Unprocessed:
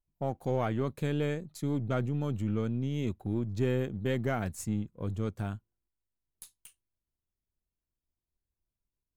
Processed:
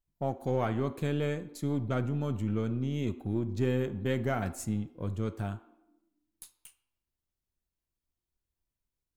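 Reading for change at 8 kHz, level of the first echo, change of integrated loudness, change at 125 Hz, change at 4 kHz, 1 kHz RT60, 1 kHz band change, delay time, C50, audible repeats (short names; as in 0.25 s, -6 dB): 0.0 dB, none, +0.5 dB, 0.0 dB, +0.5 dB, 0.85 s, +1.0 dB, none, 14.5 dB, none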